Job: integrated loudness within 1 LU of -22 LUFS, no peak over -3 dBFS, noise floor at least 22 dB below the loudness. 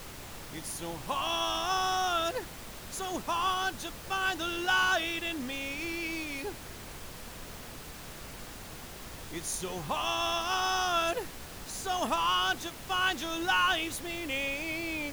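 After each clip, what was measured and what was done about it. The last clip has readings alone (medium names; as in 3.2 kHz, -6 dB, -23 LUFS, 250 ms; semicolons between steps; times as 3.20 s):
noise floor -45 dBFS; noise floor target -53 dBFS; loudness -31.0 LUFS; peak level -15.0 dBFS; loudness target -22.0 LUFS
-> noise print and reduce 8 dB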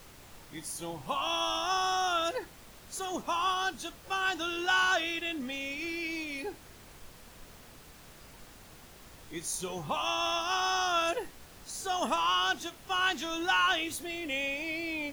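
noise floor -53 dBFS; loudness -31.0 LUFS; peak level -15.0 dBFS; loudness target -22.0 LUFS
-> trim +9 dB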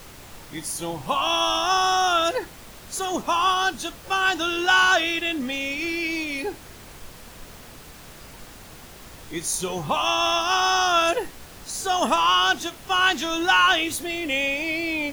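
loudness -22.0 LUFS; peak level -6.0 dBFS; noise floor -44 dBFS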